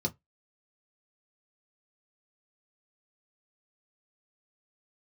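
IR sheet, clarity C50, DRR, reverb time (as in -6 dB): 26.0 dB, 0.5 dB, no single decay rate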